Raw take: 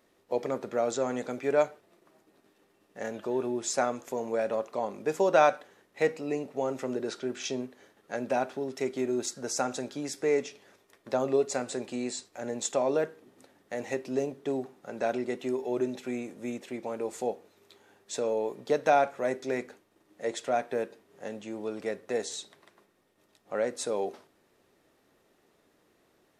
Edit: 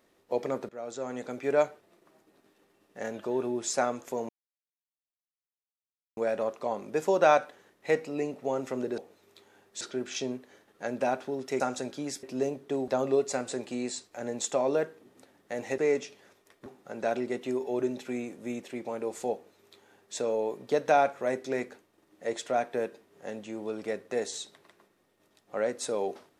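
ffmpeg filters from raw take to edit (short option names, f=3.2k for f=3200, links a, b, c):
-filter_complex "[0:a]asplit=10[a][b][c][d][e][f][g][h][i][j];[a]atrim=end=0.69,asetpts=PTS-STARTPTS,afade=t=out:st=0.686:d=0.004:c=hsin:silence=0.149624[k];[b]atrim=start=0.69:end=4.29,asetpts=PTS-STARTPTS,afade=t=in:d=0.85:silence=0.149624,afade=t=out:st=3.596:d=0.004:c=hsin,apad=pad_dur=1.88[l];[c]atrim=start=4.29:end=7.102,asetpts=PTS-STARTPTS,afade=t=in:d=0.004:c=hsin[m];[d]atrim=start=17.318:end=18.152[n];[e]atrim=start=7.098:end=8.892[o];[f]atrim=start=9.578:end=10.212[p];[g]atrim=start=13.988:end=14.642[q];[h]atrim=start=11.088:end=13.992[r];[i]atrim=start=10.208:end=11.092[s];[j]atrim=start=14.638[t];[k][l][m]concat=n=3:v=0:a=1[u];[u][n]acrossfade=d=0.004:c1=hsin:c2=hsin[v];[v][o]acrossfade=d=0.004:c1=hsin:c2=hsin[w];[w][p]acrossfade=d=0.004:c1=hsin:c2=hsin[x];[x][q]acrossfade=d=0.004:c1=hsin:c2=hsin[y];[y][r]acrossfade=d=0.004:c1=hsin:c2=hsin[z];[z][s]acrossfade=d=0.004:c1=hsin:c2=hsin[aa];[aa][t]acrossfade=d=0.004:c1=hsin:c2=hsin"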